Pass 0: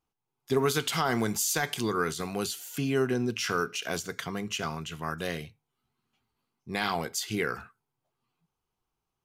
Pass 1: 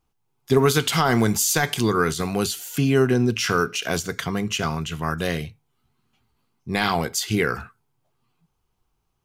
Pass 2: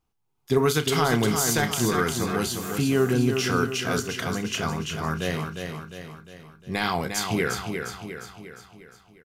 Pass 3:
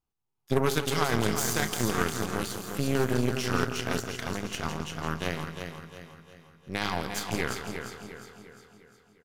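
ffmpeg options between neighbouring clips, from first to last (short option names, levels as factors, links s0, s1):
-af "lowshelf=f=120:g=9.5,volume=2.24"
-filter_complex "[0:a]asplit=2[s0][s1];[s1]adelay=33,volume=0.224[s2];[s0][s2]amix=inputs=2:normalize=0,asplit=2[s3][s4];[s4]aecho=0:1:354|708|1062|1416|1770|2124:0.501|0.256|0.13|0.0665|0.0339|0.0173[s5];[s3][s5]amix=inputs=2:normalize=0,volume=0.631"
-af "aecho=1:1:165|330|495|660|825|990|1155:0.355|0.209|0.124|0.0729|0.043|0.0254|0.015,aeval=exprs='0.376*(cos(1*acos(clip(val(0)/0.376,-1,1)))-cos(1*PI/2))+0.0841*(cos(3*acos(clip(val(0)/0.376,-1,1)))-cos(3*PI/2))+0.0266*(cos(6*acos(clip(val(0)/0.376,-1,1)))-cos(6*PI/2))':c=same"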